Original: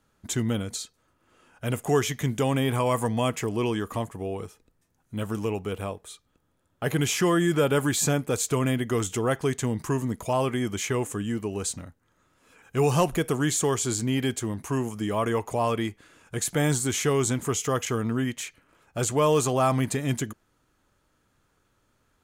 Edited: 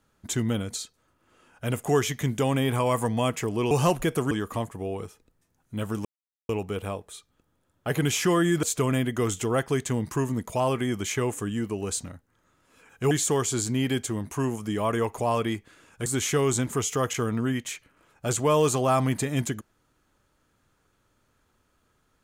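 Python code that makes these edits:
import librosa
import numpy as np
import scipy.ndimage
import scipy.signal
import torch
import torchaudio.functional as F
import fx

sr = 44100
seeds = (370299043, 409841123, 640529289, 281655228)

y = fx.edit(x, sr, fx.insert_silence(at_s=5.45, length_s=0.44),
    fx.cut(start_s=7.59, length_s=0.77),
    fx.move(start_s=12.84, length_s=0.6, to_s=3.71),
    fx.cut(start_s=16.39, length_s=0.39), tone=tone)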